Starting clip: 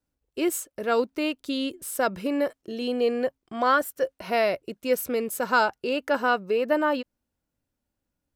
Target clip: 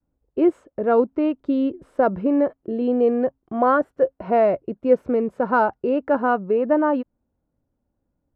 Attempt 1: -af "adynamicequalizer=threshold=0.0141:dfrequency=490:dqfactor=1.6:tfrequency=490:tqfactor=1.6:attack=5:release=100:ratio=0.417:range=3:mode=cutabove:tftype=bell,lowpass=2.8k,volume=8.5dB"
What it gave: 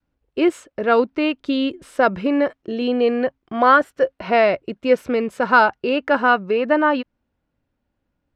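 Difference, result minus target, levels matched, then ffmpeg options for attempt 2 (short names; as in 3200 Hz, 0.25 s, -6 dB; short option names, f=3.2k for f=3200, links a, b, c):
2000 Hz band +8.5 dB
-af "adynamicequalizer=threshold=0.0141:dfrequency=490:dqfactor=1.6:tfrequency=490:tqfactor=1.6:attack=5:release=100:ratio=0.417:range=3:mode=cutabove:tftype=bell,lowpass=840,volume=8.5dB"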